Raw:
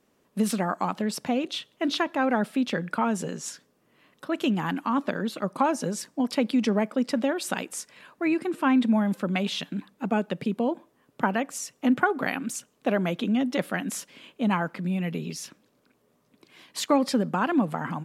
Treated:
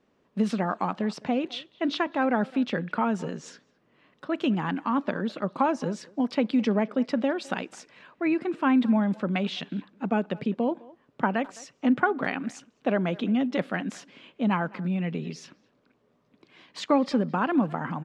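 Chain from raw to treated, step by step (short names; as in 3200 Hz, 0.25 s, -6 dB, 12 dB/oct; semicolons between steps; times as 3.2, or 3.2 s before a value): air absorption 140 m; speakerphone echo 0.21 s, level -21 dB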